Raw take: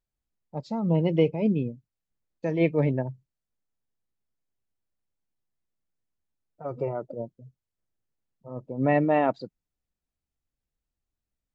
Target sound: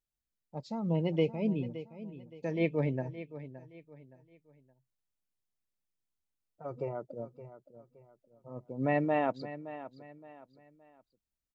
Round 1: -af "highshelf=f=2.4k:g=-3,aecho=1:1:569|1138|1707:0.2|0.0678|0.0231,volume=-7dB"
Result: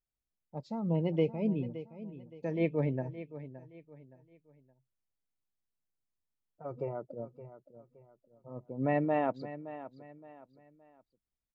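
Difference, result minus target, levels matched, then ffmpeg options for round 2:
4000 Hz band -4.5 dB
-af "highshelf=f=2.4k:g=5,aecho=1:1:569|1138|1707:0.2|0.0678|0.0231,volume=-7dB"

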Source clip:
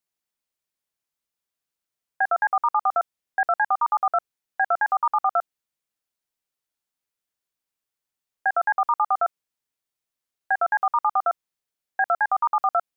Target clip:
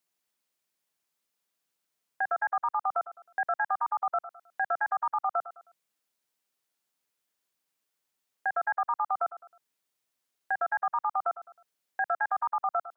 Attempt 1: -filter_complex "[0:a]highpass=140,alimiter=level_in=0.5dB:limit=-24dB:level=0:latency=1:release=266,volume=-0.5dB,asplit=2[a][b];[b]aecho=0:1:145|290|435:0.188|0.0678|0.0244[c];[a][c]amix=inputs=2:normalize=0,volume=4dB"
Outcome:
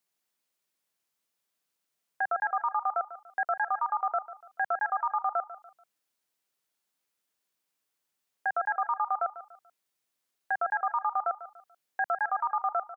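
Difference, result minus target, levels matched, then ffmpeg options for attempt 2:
echo 40 ms late
-filter_complex "[0:a]highpass=140,alimiter=level_in=0.5dB:limit=-24dB:level=0:latency=1:release=266,volume=-0.5dB,asplit=2[a][b];[b]aecho=0:1:105|210|315:0.188|0.0678|0.0244[c];[a][c]amix=inputs=2:normalize=0,volume=4dB"

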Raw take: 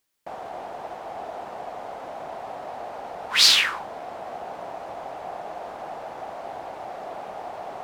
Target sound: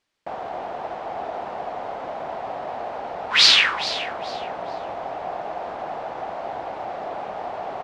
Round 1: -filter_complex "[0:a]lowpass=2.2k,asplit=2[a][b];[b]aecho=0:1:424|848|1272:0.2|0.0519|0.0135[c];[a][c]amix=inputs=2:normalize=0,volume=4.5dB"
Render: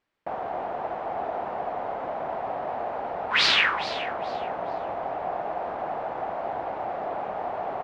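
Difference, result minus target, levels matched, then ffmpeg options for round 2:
4000 Hz band -3.5 dB
-filter_complex "[0:a]lowpass=4.5k,asplit=2[a][b];[b]aecho=0:1:424|848|1272:0.2|0.0519|0.0135[c];[a][c]amix=inputs=2:normalize=0,volume=4.5dB"

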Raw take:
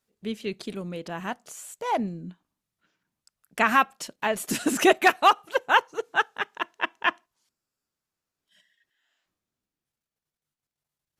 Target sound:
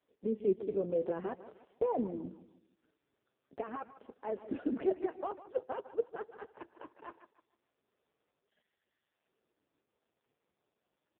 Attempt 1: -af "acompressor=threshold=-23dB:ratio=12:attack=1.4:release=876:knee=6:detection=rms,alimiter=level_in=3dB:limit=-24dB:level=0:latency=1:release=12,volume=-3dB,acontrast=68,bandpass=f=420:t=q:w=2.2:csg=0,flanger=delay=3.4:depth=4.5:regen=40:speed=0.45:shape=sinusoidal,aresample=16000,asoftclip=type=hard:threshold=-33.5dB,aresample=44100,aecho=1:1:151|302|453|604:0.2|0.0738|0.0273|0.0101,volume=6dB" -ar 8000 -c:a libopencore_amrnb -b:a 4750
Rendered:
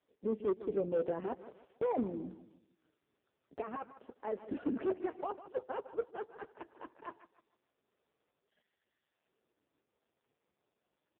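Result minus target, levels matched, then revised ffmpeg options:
hard clip: distortion +36 dB
-af "acompressor=threshold=-23dB:ratio=12:attack=1.4:release=876:knee=6:detection=rms,alimiter=level_in=3dB:limit=-24dB:level=0:latency=1:release=12,volume=-3dB,acontrast=68,bandpass=f=420:t=q:w=2.2:csg=0,flanger=delay=3.4:depth=4.5:regen=40:speed=0.45:shape=sinusoidal,aresample=16000,asoftclip=type=hard:threshold=-25.5dB,aresample=44100,aecho=1:1:151|302|453|604:0.2|0.0738|0.0273|0.0101,volume=6dB" -ar 8000 -c:a libopencore_amrnb -b:a 4750

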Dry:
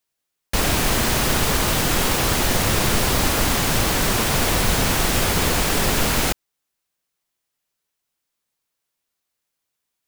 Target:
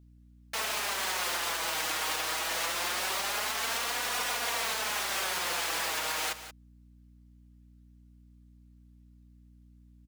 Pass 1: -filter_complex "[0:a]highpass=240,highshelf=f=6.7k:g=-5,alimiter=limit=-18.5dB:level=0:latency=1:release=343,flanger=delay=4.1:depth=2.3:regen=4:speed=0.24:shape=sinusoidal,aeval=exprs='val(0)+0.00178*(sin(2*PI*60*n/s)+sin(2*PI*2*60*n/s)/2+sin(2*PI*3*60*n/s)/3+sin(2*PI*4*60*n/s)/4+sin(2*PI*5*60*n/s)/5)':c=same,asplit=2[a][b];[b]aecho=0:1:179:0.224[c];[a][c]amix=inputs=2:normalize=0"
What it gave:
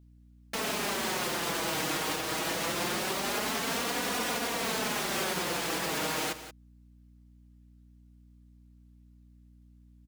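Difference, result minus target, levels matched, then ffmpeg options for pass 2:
250 Hz band +13.5 dB
-filter_complex "[0:a]highpass=750,highshelf=f=6.7k:g=-5,alimiter=limit=-18.5dB:level=0:latency=1:release=343,flanger=delay=4.1:depth=2.3:regen=4:speed=0.24:shape=sinusoidal,aeval=exprs='val(0)+0.00178*(sin(2*PI*60*n/s)+sin(2*PI*2*60*n/s)/2+sin(2*PI*3*60*n/s)/3+sin(2*PI*4*60*n/s)/4+sin(2*PI*5*60*n/s)/5)':c=same,asplit=2[a][b];[b]aecho=0:1:179:0.224[c];[a][c]amix=inputs=2:normalize=0"

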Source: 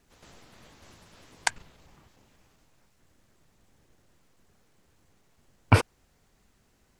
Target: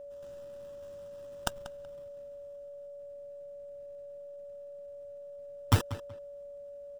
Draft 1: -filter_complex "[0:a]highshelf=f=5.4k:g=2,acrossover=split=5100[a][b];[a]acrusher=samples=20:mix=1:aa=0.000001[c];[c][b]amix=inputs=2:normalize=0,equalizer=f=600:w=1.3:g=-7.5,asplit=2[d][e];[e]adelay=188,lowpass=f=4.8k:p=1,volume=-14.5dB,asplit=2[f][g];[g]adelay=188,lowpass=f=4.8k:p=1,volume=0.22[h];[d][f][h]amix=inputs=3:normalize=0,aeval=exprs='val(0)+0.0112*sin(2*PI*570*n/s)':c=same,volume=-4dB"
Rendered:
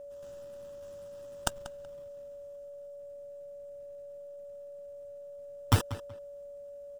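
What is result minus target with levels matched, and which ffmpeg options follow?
8000 Hz band +3.0 dB
-filter_complex "[0:a]highshelf=f=5.4k:g=-7,acrossover=split=5100[a][b];[a]acrusher=samples=20:mix=1:aa=0.000001[c];[c][b]amix=inputs=2:normalize=0,equalizer=f=600:w=1.3:g=-7.5,asplit=2[d][e];[e]adelay=188,lowpass=f=4.8k:p=1,volume=-14.5dB,asplit=2[f][g];[g]adelay=188,lowpass=f=4.8k:p=1,volume=0.22[h];[d][f][h]amix=inputs=3:normalize=0,aeval=exprs='val(0)+0.0112*sin(2*PI*570*n/s)':c=same,volume=-4dB"

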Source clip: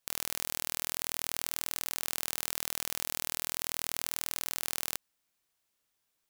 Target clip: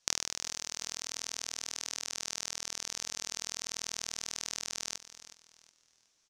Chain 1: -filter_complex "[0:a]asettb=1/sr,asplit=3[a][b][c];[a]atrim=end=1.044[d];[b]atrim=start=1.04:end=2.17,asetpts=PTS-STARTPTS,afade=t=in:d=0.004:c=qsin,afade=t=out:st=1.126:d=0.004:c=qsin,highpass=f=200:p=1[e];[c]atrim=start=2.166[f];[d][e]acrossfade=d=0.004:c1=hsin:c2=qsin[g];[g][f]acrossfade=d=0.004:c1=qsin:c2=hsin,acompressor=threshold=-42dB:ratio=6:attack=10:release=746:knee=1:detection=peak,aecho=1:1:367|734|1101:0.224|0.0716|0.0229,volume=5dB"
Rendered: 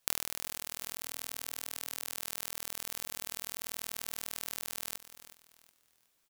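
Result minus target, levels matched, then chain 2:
8000 Hz band -3.5 dB
-filter_complex "[0:a]asettb=1/sr,asplit=3[a][b][c];[a]atrim=end=1.044[d];[b]atrim=start=1.04:end=2.17,asetpts=PTS-STARTPTS,afade=t=in:d=0.004:c=qsin,afade=t=out:st=1.126:d=0.004:c=qsin,highpass=f=200:p=1[e];[c]atrim=start=2.166[f];[d][e]acrossfade=d=0.004:c1=hsin:c2=qsin[g];[g][f]acrossfade=d=0.004:c1=qsin:c2=hsin,acompressor=threshold=-42dB:ratio=6:attack=10:release=746:knee=1:detection=peak,lowpass=f=6k:t=q:w=3.4,aecho=1:1:367|734|1101:0.224|0.0716|0.0229,volume=5dB"

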